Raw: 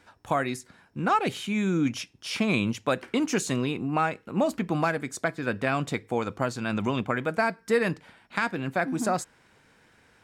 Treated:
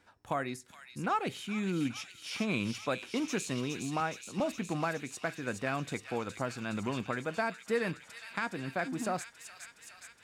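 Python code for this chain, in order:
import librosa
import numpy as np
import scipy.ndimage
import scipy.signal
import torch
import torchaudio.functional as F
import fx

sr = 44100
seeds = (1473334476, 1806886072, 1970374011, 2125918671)

p1 = fx.rattle_buzz(x, sr, strikes_db=-27.0, level_db=-29.0)
p2 = p1 + fx.echo_wet_highpass(p1, sr, ms=416, feedback_pct=74, hz=2700.0, wet_db=-4.5, dry=0)
p3 = fx.band_widen(p2, sr, depth_pct=40, at=(4.0, 4.4))
y = p3 * 10.0 ** (-7.5 / 20.0)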